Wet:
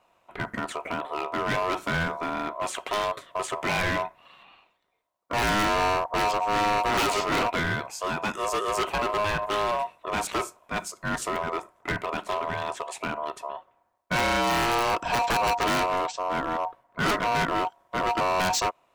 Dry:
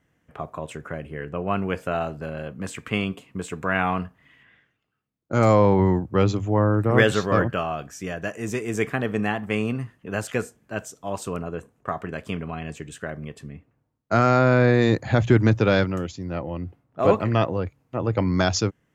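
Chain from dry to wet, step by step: integer overflow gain 7.5 dB; ring modulator 830 Hz; overload inside the chain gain 27.5 dB; trim +6 dB

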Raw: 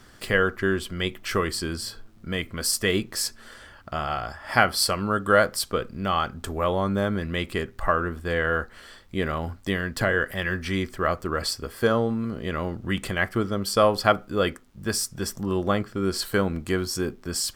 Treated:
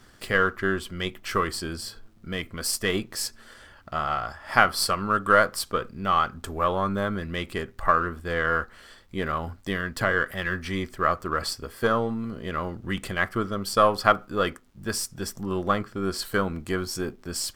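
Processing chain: partial rectifier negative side -3 dB; dynamic bell 1.2 kHz, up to +7 dB, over -40 dBFS, Q 2; trim -1.5 dB

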